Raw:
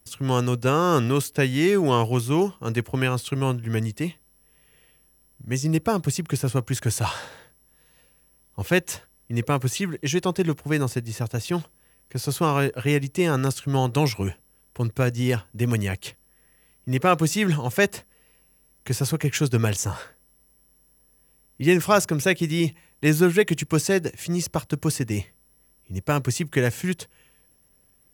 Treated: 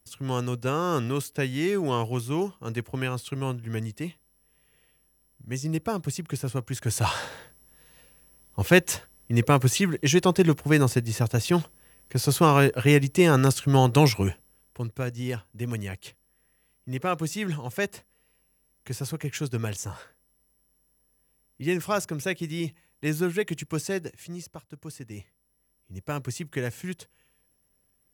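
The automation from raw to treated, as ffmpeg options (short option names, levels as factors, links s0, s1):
-af "volume=5.01,afade=t=in:st=6.81:d=0.4:silence=0.354813,afade=t=out:st=14.05:d=0.84:silence=0.281838,afade=t=out:st=23.96:d=0.68:silence=0.266073,afade=t=in:st=24.64:d=1.54:silence=0.281838"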